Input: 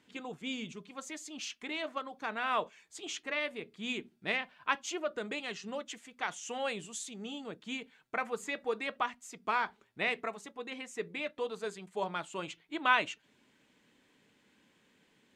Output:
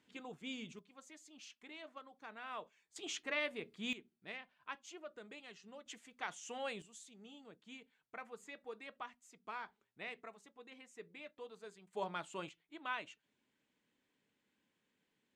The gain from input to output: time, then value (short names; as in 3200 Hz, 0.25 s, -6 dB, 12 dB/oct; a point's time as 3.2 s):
-7 dB
from 0.79 s -14.5 dB
from 2.96 s -3 dB
from 3.93 s -15 dB
from 5.86 s -7 dB
from 6.82 s -14.5 dB
from 11.93 s -5.5 dB
from 12.49 s -14.5 dB